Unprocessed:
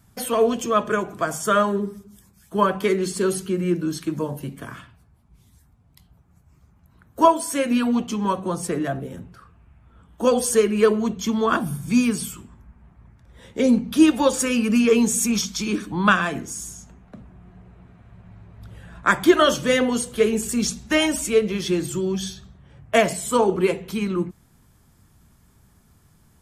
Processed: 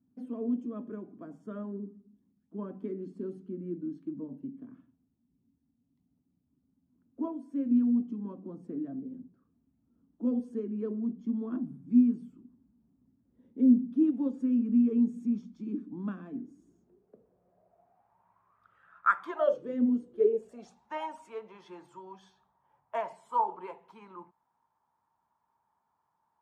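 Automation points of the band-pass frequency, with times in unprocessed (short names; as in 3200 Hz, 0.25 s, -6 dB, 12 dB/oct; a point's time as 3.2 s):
band-pass, Q 8.7
16.43 s 260 Hz
18.7 s 1300 Hz
19.2 s 1300 Hz
19.85 s 230 Hz
20.82 s 920 Hz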